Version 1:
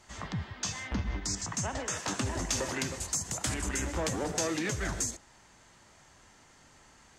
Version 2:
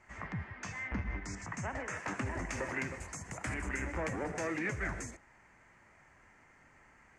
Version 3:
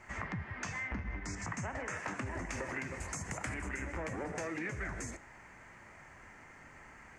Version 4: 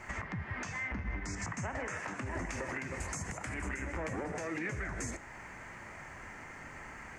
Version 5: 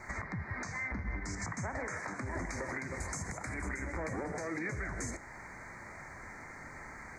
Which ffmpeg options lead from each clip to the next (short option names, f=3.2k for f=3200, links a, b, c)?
-af "lowpass=f=11k:w=0.5412,lowpass=f=11k:w=1.3066,highshelf=f=2.8k:t=q:w=3:g=-9,volume=-4.5dB"
-af "acompressor=threshold=-44dB:ratio=6,flanger=delay=8.5:depth=5.8:regen=-87:speed=0.5:shape=sinusoidal,volume=12dB"
-af "alimiter=level_in=10.5dB:limit=-24dB:level=0:latency=1:release=413,volume=-10.5dB,volume=7dB"
-af "asuperstop=centerf=3000:order=12:qfactor=2.1"